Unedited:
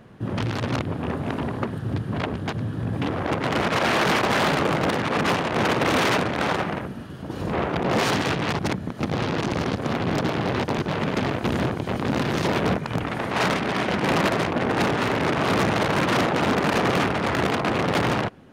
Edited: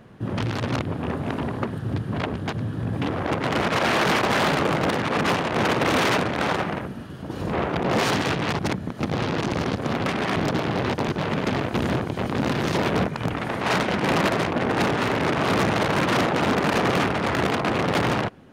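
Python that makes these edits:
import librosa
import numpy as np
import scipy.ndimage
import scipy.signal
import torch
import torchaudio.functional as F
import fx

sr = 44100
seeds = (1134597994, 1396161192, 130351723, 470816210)

y = fx.edit(x, sr, fx.move(start_s=13.53, length_s=0.3, to_s=10.06), tone=tone)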